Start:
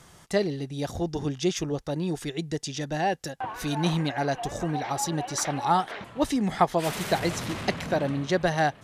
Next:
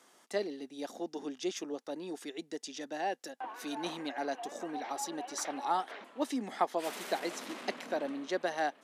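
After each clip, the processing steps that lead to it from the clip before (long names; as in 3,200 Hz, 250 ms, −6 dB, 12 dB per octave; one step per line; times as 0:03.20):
Chebyshev high-pass filter 240 Hz, order 4
level −8 dB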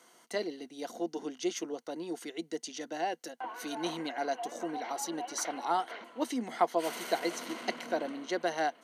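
EQ curve with evenly spaced ripples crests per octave 1.9, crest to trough 7 dB
level +1.5 dB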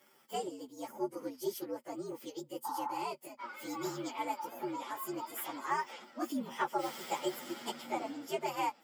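partials spread apart or drawn together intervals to 121%
healed spectral selection 0:02.68–0:02.98, 720–1,900 Hz after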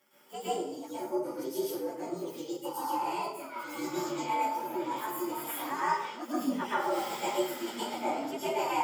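dense smooth reverb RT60 0.69 s, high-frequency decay 0.75×, pre-delay 100 ms, DRR −9 dB
level −4.5 dB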